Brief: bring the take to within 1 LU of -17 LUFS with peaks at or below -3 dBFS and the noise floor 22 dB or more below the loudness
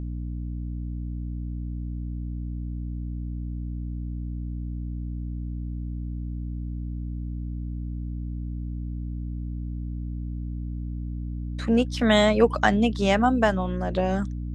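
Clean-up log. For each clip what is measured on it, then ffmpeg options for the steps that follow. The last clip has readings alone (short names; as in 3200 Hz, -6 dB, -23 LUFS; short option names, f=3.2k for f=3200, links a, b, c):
hum 60 Hz; harmonics up to 300 Hz; hum level -29 dBFS; loudness -28.0 LUFS; peak -4.5 dBFS; loudness target -17.0 LUFS
-> -af "bandreject=f=60:t=h:w=4,bandreject=f=120:t=h:w=4,bandreject=f=180:t=h:w=4,bandreject=f=240:t=h:w=4,bandreject=f=300:t=h:w=4"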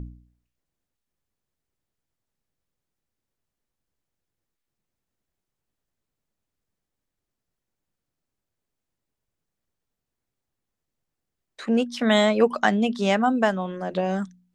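hum none; loudness -22.5 LUFS; peak -5.0 dBFS; loudness target -17.0 LUFS
-> -af "volume=5.5dB,alimiter=limit=-3dB:level=0:latency=1"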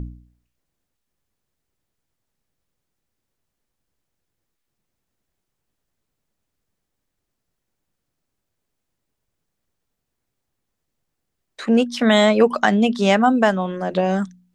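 loudness -17.5 LUFS; peak -3.0 dBFS; noise floor -79 dBFS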